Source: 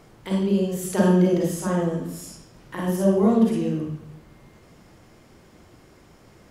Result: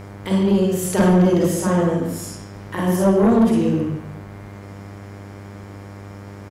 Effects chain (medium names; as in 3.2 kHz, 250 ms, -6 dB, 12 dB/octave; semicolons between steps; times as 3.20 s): speakerphone echo 140 ms, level -8 dB; Chebyshev shaper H 5 -14 dB, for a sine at -5.5 dBFS; mains buzz 100 Hz, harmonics 24, -37 dBFS -6 dB/octave